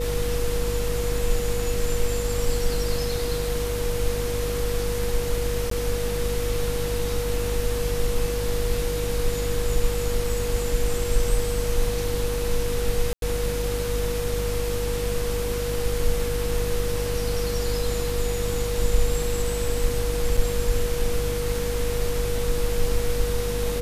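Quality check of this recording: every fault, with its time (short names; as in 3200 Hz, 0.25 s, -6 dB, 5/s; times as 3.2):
buzz 50 Hz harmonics 11 -29 dBFS
tone 480 Hz -27 dBFS
5.7–5.71 gap 13 ms
13.13–13.22 gap 92 ms
20.37 gap 4.5 ms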